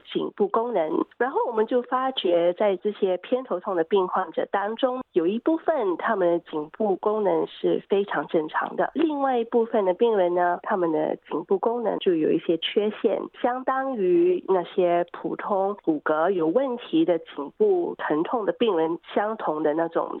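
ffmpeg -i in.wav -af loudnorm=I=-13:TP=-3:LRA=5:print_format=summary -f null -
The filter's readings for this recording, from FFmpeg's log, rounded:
Input Integrated:    -24.4 LUFS
Input True Peak:     -10.8 dBTP
Input LRA:             1.5 LU
Input Threshold:     -34.4 LUFS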